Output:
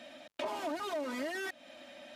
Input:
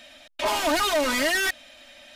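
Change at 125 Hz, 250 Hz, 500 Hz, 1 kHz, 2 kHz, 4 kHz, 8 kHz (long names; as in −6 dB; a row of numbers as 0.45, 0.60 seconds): can't be measured, −10.5 dB, −11.5 dB, −13.5 dB, −16.5 dB, −19.0 dB, −21.0 dB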